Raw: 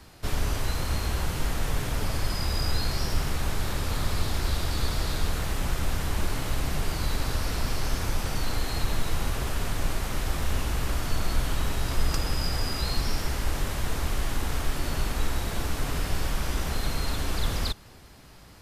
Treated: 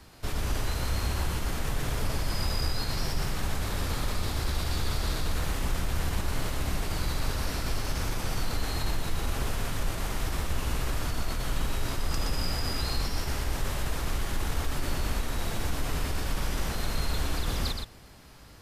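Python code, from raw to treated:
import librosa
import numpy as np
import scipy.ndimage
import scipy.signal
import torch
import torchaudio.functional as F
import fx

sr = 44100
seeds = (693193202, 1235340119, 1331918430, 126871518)

p1 = fx.over_compress(x, sr, threshold_db=-26.0, ratio=-1.0)
p2 = x + F.gain(torch.from_numpy(p1), -0.5).numpy()
p3 = p2 + 10.0 ** (-5.0 / 20.0) * np.pad(p2, (int(120 * sr / 1000.0), 0))[:len(p2)]
y = F.gain(torch.from_numpy(p3), -8.5).numpy()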